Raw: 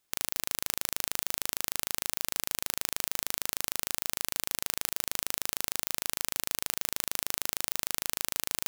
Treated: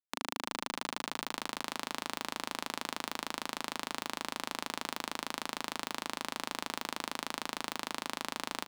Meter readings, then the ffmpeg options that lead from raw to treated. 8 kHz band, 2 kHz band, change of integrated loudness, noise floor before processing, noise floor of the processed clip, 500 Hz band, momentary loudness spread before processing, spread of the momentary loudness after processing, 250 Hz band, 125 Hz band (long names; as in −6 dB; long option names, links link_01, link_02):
−11.5 dB, −0.5 dB, −7.0 dB, −76 dBFS, −60 dBFS, +1.5 dB, 0 LU, 0 LU, +5.0 dB, −6.0 dB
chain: -filter_complex "[0:a]aeval=exprs='0.794*(cos(1*acos(clip(val(0)/0.794,-1,1)))-cos(1*PI/2))+0.282*(cos(3*acos(clip(val(0)/0.794,-1,1)))-cos(3*PI/2))':channel_layout=same,acrossover=split=4200[link_01][link_02];[link_02]acompressor=threshold=-36dB:ratio=4:attack=1:release=60[link_03];[link_01][link_03]amix=inputs=2:normalize=0,acrossover=split=150|3000[link_04][link_05][link_06];[link_04]alimiter=level_in=28dB:limit=-24dB:level=0:latency=1,volume=-28dB[link_07];[link_07][link_05][link_06]amix=inputs=3:normalize=0,acrusher=bits=7:mix=0:aa=0.000001,equalizer=frequency=125:width_type=o:width=1:gain=-3,equalizer=frequency=250:width_type=o:width=1:gain=12,equalizer=frequency=1000:width_type=o:width=1:gain=10,equalizer=frequency=4000:width_type=o:width=1:gain=4,equalizer=frequency=8000:width_type=o:width=1:gain=8,asplit=2[link_08][link_09];[link_09]asplit=6[link_10][link_11][link_12][link_13][link_14][link_15];[link_10]adelay=308,afreqshift=-35,volume=-15.5dB[link_16];[link_11]adelay=616,afreqshift=-70,volume=-20.1dB[link_17];[link_12]adelay=924,afreqshift=-105,volume=-24.7dB[link_18];[link_13]adelay=1232,afreqshift=-140,volume=-29.2dB[link_19];[link_14]adelay=1540,afreqshift=-175,volume=-33.8dB[link_20];[link_15]adelay=1848,afreqshift=-210,volume=-38.4dB[link_21];[link_16][link_17][link_18][link_19][link_20][link_21]amix=inputs=6:normalize=0[link_22];[link_08][link_22]amix=inputs=2:normalize=0,volume=-6.5dB"